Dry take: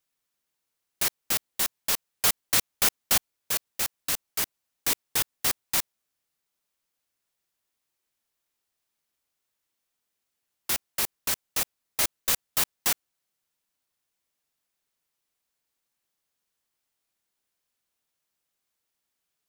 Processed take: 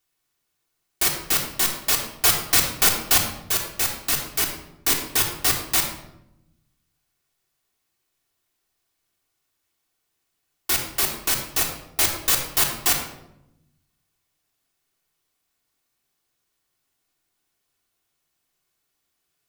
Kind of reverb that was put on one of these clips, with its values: simulated room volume 2700 m³, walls furnished, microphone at 3.4 m; trim +3.5 dB

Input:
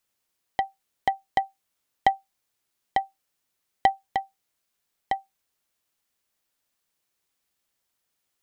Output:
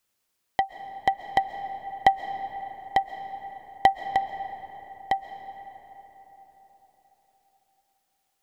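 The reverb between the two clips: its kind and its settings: algorithmic reverb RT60 4.5 s, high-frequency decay 0.45×, pre-delay 95 ms, DRR 9.5 dB; trim +2 dB

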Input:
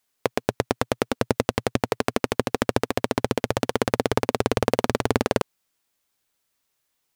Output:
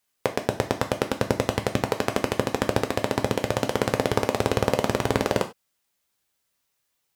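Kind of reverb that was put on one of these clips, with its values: gated-style reverb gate 120 ms falling, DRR 5 dB; trim -1.5 dB

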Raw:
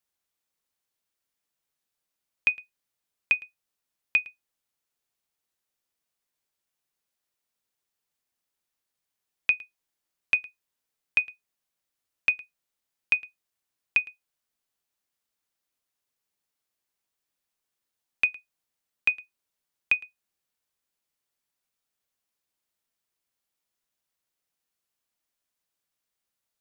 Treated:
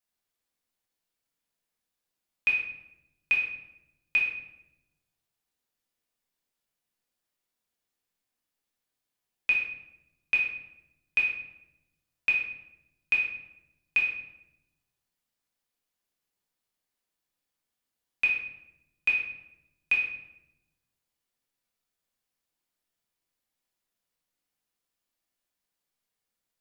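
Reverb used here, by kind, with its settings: simulated room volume 280 m³, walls mixed, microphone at 1.9 m; trim -6 dB

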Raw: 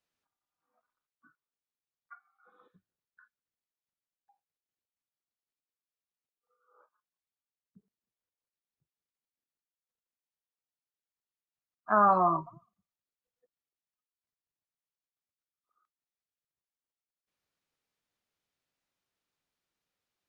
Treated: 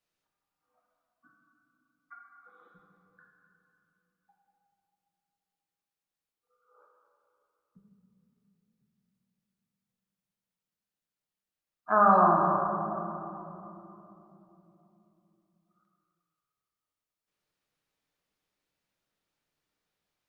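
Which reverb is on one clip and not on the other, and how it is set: simulated room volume 160 m³, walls hard, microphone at 0.51 m

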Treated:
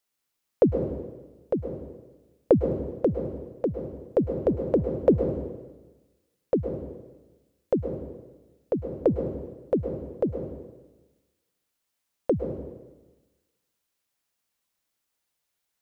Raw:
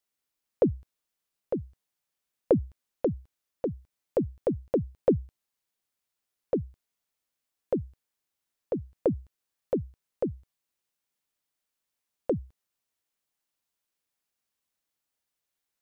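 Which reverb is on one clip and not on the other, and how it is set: plate-style reverb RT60 1.2 s, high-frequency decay 1×, pre-delay 95 ms, DRR 5.5 dB; trim +3.5 dB

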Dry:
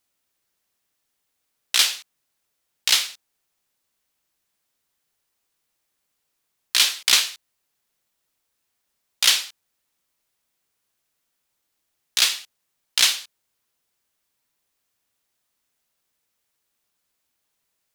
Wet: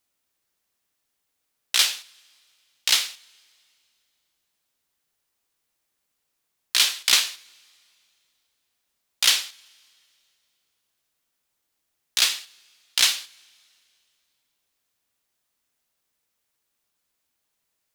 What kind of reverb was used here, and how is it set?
two-slope reverb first 0.56 s, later 2.6 s, from -15 dB, DRR 18 dB; trim -1.5 dB

